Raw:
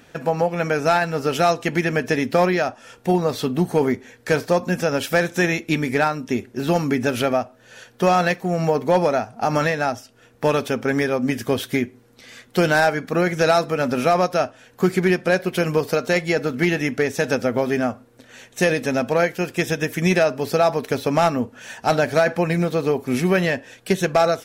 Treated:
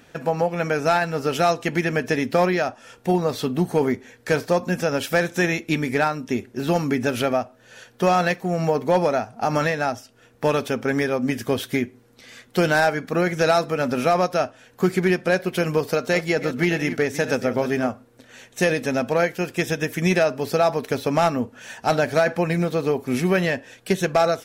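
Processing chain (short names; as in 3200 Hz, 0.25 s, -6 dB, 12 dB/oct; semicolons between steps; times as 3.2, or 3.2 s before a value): 15.83–17.9 reverse delay 0.237 s, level -12 dB; gain -1.5 dB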